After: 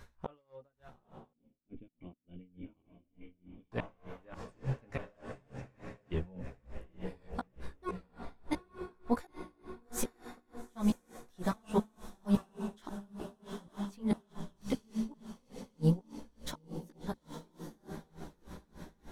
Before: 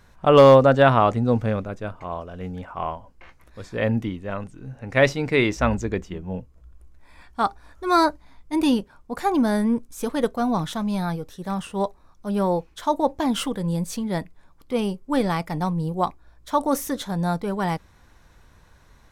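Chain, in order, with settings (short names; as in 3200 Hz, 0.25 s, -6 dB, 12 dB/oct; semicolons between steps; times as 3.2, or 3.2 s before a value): flipped gate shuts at -18 dBFS, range -41 dB; on a send: diffused feedback echo 0.876 s, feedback 58%, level -8 dB; on the sum: chorus voices 6, 0.6 Hz, delay 15 ms, depth 2.4 ms; 1.33–3.72 vocal tract filter i; dB-linear tremolo 3.4 Hz, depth 27 dB; gain +4.5 dB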